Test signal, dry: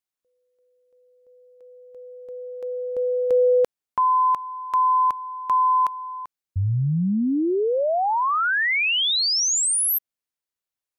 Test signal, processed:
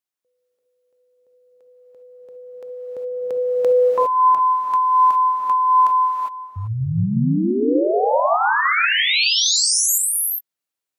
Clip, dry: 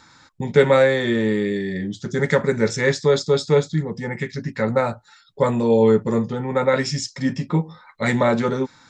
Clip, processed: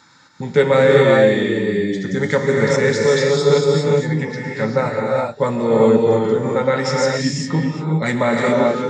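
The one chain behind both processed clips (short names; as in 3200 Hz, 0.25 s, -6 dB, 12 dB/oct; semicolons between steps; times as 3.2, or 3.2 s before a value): HPF 110 Hz 12 dB/oct; non-linear reverb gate 0.43 s rising, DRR -1.5 dB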